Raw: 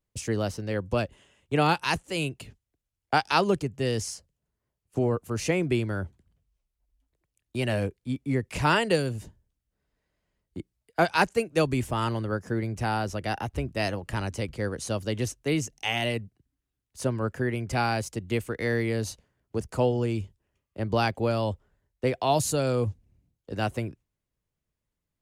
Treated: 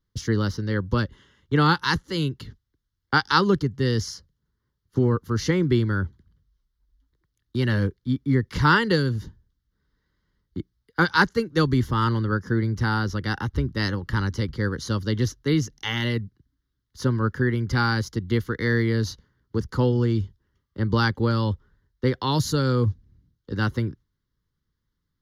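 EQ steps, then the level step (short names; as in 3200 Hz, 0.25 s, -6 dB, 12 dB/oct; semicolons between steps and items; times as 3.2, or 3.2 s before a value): high shelf 11000 Hz -11.5 dB; fixed phaser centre 2500 Hz, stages 6; +7.5 dB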